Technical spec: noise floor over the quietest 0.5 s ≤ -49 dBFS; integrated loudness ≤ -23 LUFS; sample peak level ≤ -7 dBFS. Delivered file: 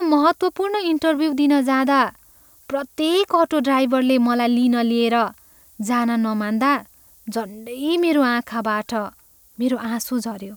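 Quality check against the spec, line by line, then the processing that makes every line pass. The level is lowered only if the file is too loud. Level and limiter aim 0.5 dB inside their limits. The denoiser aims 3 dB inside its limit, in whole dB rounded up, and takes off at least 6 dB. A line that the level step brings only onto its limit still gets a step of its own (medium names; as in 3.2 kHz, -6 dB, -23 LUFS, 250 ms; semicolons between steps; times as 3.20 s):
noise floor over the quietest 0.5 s -51 dBFS: pass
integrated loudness -20.0 LUFS: fail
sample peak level -4.5 dBFS: fail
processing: trim -3.5 dB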